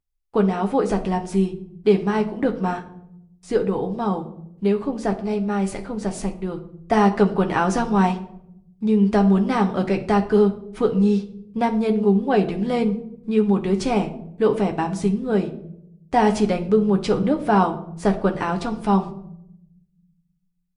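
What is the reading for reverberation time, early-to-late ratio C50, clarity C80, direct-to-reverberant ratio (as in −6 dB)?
0.75 s, 13.0 dB, 16.5 dB, 4.0 dB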